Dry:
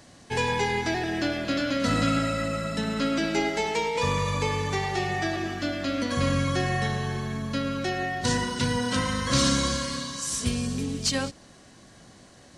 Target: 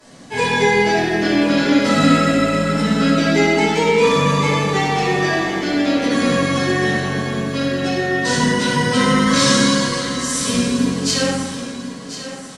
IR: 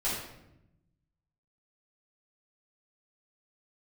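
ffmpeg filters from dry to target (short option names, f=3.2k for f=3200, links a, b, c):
-filter_complex "[0:a]lowshelf=f=120:t=q:w=1.5:g=-10,acrossover=split=160[a][b];[a]alimiter=level_in=11.5dB:limit=-24dB:level=0:latency=1,volume=-11.5dB[c];[b]aecho=1:1:1039|2078|3117|4156:0.251|0.105|0.0443|0.0186[d];[c][d]amix=inputs=2:normalize=0[e];[1:a]atrim=start_sample=2205,asetrate=28665,aresample=44100[f];[e][f]afir=irnorm=-1:irlink=0,volume=-1dB"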